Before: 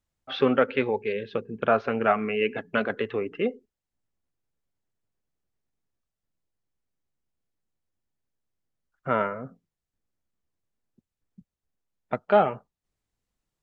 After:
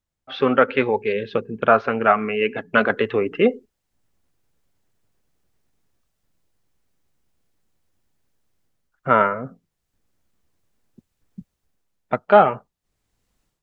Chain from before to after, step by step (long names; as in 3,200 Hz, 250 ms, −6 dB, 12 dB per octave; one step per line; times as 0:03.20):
dynamic equaliser 1,200 Hz, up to +5 dB, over −33 dBFS, Q 1.1
automatic gain control gain up to 14.5 dB
level −1 dB